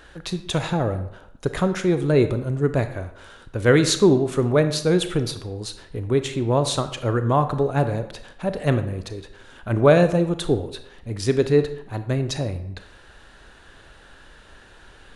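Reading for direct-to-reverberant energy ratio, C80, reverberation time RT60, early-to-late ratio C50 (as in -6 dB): 9.5 dB, 13.5 dB, 0.80 s, 11.5 dB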